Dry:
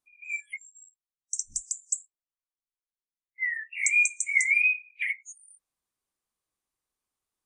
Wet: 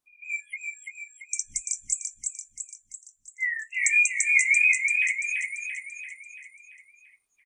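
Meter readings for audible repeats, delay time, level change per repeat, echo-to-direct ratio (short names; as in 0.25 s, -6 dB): 6, 0.339 s, -5.5 dB, -2.5 dB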